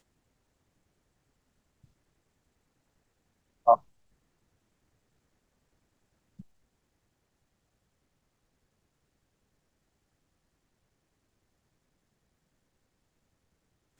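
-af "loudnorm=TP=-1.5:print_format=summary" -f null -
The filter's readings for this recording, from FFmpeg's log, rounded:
Input Integrated:    -25.5 LUFS
Input True Peak:      -6.6 dBTP
Input LRA:             0.0 LU
Input Threshold:     -40.0 LUFS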